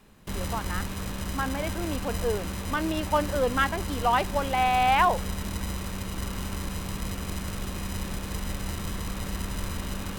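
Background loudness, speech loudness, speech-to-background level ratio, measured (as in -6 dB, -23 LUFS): -33.5 LUFS, -27.5 LUFS, 6.0 dB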